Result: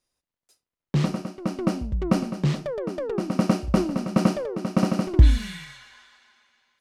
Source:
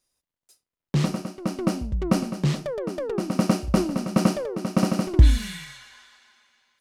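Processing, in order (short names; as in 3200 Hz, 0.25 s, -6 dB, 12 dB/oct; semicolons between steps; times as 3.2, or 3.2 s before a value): high shelf 6200 Hz -8.5 dB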